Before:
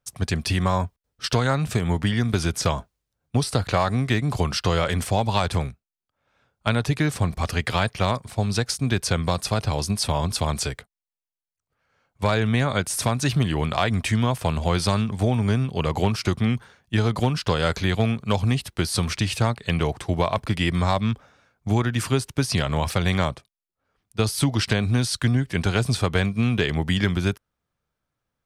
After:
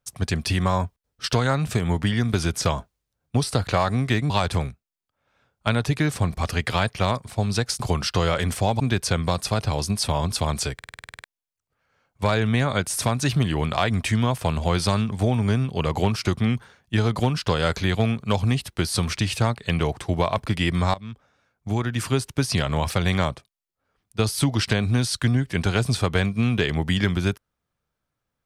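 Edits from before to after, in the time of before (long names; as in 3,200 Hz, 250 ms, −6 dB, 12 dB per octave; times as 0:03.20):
0:04.30–0:05.30: move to 0:08.80
0:10.74: stutter in place 0.05 s, 10 plays
0:20.94–0:22.23: fade in, from −17.5 dB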